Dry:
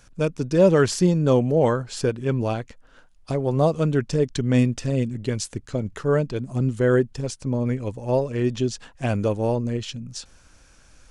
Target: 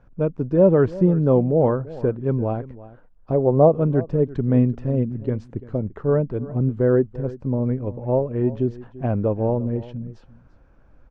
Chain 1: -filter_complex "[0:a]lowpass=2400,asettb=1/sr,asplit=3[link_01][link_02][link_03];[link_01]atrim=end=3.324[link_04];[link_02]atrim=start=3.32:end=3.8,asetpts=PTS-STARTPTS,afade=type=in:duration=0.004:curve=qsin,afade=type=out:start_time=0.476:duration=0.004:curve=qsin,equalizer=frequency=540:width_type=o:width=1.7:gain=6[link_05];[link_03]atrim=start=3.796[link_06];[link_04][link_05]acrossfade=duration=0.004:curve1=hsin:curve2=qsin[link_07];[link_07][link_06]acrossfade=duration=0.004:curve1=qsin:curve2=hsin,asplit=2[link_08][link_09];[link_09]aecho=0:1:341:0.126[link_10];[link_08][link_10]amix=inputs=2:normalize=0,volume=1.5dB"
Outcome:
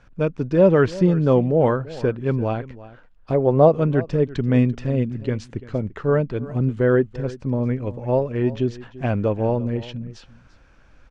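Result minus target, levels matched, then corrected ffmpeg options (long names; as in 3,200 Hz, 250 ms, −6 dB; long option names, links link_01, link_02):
2,000 Hz band +9.0 dB
-filter_complex "[0:a]lowpass=940,asettb=1/sr,asplit=3[link_01][link_02][link_03];[link_01]atrim=end=3.324[link_04];[link_02]atrim=start=3.32:end=3.8,asetpts=PTS-STARTPTS,afade=type=in:duration=0.004:curve=qsin,afade=type=out:start_time=0.476:duration=0.004:curve=qsin,equalizer=frequency=540:width_type=o:width=1.7:gain=6[link_05];[link_03]atrim=start=3.796[link_06];[link_04][link_05]acrossfade=duration=0.004:curve1=hsin:curve2=qsin[link_07];[link_07][link_06]acrossfade=duration=0.004:curve1=qsin:curve2=hsin,asplit=2[link_08][link_09];[link_09]aecho=0:1:341:0.126[link_10];[link_08][link_10]amix=inputs=2:normalize=0,volume=1.5dB"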